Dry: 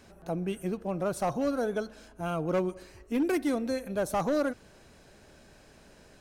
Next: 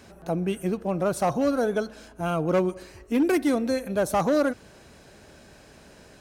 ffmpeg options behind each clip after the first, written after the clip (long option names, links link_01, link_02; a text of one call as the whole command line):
ffmpeg -i in.wav -af "highpass=41,volume=5.5dB" out.wav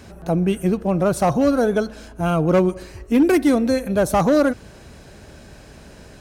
ffmpeg -i in.wav -af "lowshelf=frequency=150:gain=9,volume=5dB" out.wav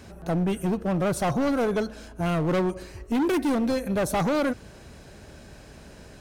ffmpeg -i in.wav -af "volume=17.5dB,asoftclip=hard,volume=-17.5dB,volume=-3.5dB" out.wav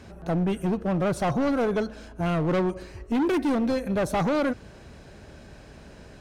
ffmpeg -i in.wav -af "highshelf=frequency=7800:gain=-11.5" out.wav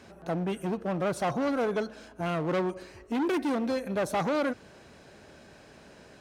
ffmpeg -i in.wav -af "highpass=frequency=270:poles=1,volume=-2dB" out.wav